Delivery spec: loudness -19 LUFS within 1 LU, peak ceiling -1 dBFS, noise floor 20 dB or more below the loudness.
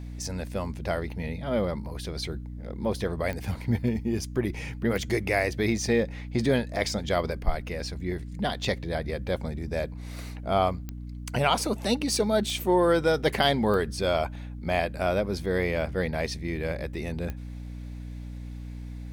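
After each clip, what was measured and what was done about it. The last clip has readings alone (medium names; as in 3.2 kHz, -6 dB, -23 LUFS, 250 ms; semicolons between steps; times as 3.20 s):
clicks found 7; hum 60 Hz; highest harmonic 300 Hz; hum level -35 dBFS; loudness -28.0 LUFS; peak level -9.0 dBFS; loudness target -19.0 LUFS
-> de-click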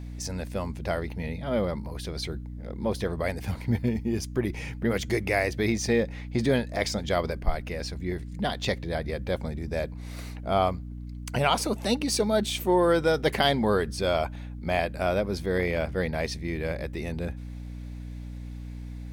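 clicks found 0; hum 60 Hz; highest harmonic 300 Hz; hum level -35 dBFS
-> de-hum 60 Hz, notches 5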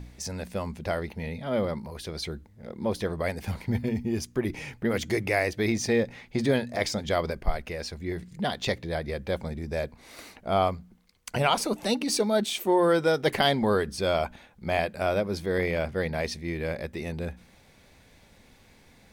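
hum not found; loudness -28.5 LUFS; peak level -9.5 dBFS; loudness target -19.0 LUFS
-> trim +9.5 dB; peak limiter -1 dBFS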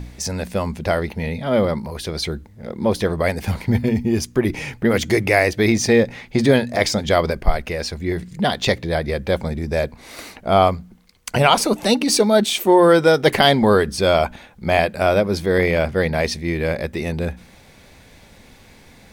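loudness -19.0 LUFS; peak level -1.0 dBFS; noise floor -48 dBFS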